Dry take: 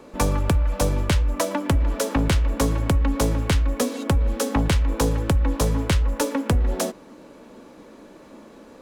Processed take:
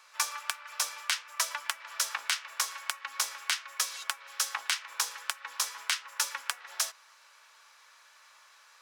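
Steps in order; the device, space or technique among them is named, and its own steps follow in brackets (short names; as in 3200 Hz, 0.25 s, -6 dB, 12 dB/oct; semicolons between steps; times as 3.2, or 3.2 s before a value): headphones lying on a table (HPF 1200 Hz 24 dB/oct; bell 5400 Hz +5 dB 0.52 oct); gain -1.5 dB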